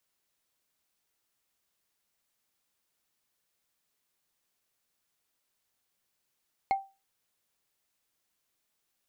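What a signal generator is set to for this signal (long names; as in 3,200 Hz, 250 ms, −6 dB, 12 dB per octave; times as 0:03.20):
struck wood, lowest mode 781 Hz, decay 0.28 s, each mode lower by 10 dB, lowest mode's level −20 dB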